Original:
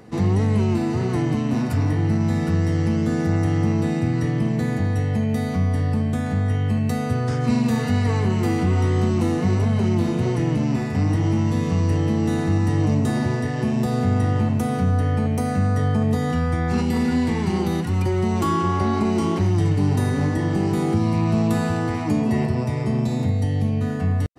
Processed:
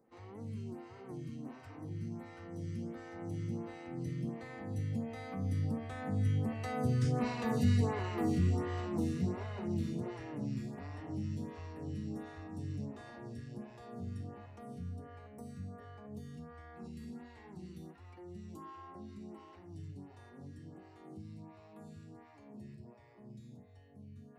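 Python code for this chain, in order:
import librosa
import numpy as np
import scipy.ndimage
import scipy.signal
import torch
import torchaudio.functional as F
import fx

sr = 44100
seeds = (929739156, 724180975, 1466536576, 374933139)

y = fx.doppler_pass(x, sr, speed_mps=14, closest_m=17.0, pass_at_s=7.34)
y = fx.stagger_phaser(y, sr, hz=1.4)
y = F.gain(torch.from_numpy(y), -6.5).numpy()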